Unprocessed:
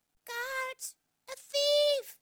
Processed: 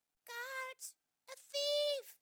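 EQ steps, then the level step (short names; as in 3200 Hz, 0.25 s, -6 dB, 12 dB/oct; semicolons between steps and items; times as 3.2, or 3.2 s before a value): low shelf 270 Hz -8 dB; -8.0 dB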